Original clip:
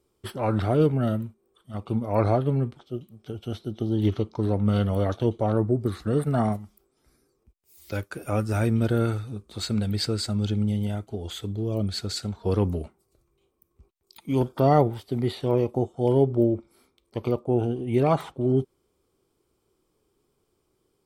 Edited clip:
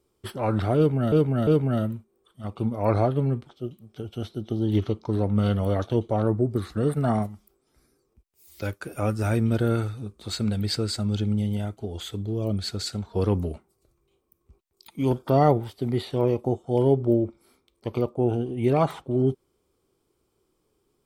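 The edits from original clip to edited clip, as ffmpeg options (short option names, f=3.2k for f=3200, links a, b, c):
-filter_complex "[0:a]asplit=3[a][b][c];[a]atrim=end=1.122[d];[b]atrim=start=0.768:end=1.122[e];[c]atrim=start=0.768[f];[d][e]acrossfade=d=0.004:c1=hsin:c2=hsin[g];[g][f]acrossfade=d=0.004:c1=hsin:c2=hsin"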